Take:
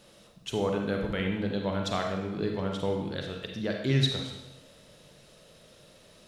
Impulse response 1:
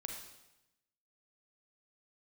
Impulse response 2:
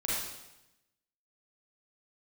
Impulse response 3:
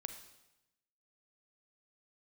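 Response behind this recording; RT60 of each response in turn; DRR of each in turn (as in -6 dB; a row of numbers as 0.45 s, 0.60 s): 1; 0.95 s, 0.95 s, 0.95 s; 2.0 dB, -7.0 dB, 7.5 dB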